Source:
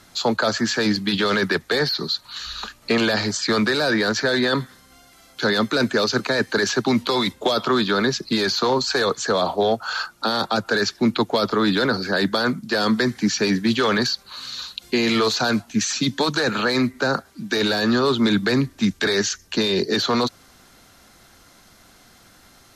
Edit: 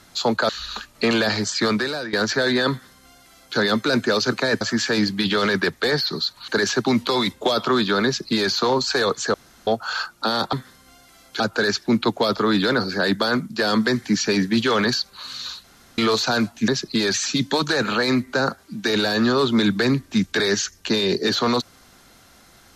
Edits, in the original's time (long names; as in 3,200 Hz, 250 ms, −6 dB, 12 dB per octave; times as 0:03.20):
0:00.49–0:02.36: move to 0:06.48
0:03.52–0:04.00: fade out, to −16 dB
0:04.57–0:05.44: duplicate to 0:10.53
0:08.05–0:08.51: duplicate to 0:15.81
0:09.34–0:09.67: fill with room tone
0:14.77–0:15.11: fill with room tone